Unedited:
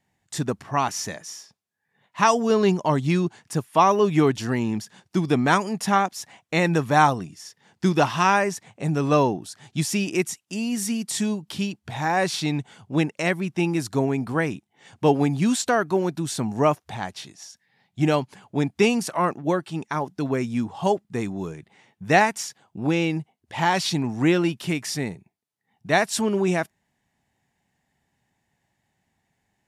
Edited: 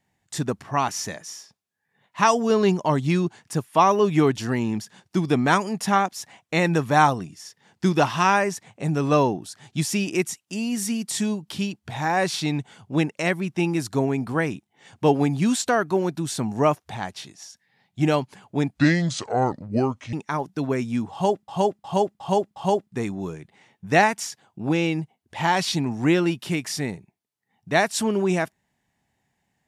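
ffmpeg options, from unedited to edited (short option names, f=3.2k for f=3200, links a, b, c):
-filter_complex "[0:a]asplit=7[a][b][c][d][e][f][g];[a]atrim=end=18.774[h];[b]atrim=start=18.77:end=19.75,asetpts=PTS-STARTPTS,asetrate=31752,aresample=44100[i];[c]atrim=start=19.746:end=21.102[j];[d]atrim=start=20.738:end=21.102[k];[e]atrim=start=20.738:end=21.102[l];[f]atrim=start=20.738:end=21.102[m];[g]atrim=start=20.738[n];[h][i]acrossfade=d=0.004:c1=hsin:c2=hsin[o];[o][j]acrossfade=d=0.004:c1=hsin:c2=hsin[p];[p][k]acrossfade=d=0.004:c1=hsin:c2=hsin[q];[q][l]acrossfade=d=0.004:c1=hsin:c2=hsin[r];[r][m]acrossfade=d=0.004:c1=hsin:c2=hsin[s];[s][n]acrossfade=d=0.004:c1=hsin:c2=hsin"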